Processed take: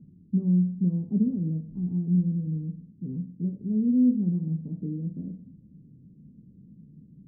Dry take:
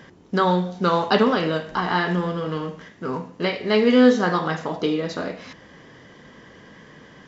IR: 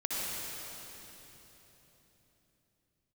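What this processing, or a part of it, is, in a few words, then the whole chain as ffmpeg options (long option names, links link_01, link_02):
the neighbour's flat through the wall: -af "lowpass=frequency=240:width=0.5412,lowpass=frequency=240:width=1.3066,equalizer=frequency=170:width_type=o:width=0.95:gain=6.5,volume=-3.5dB"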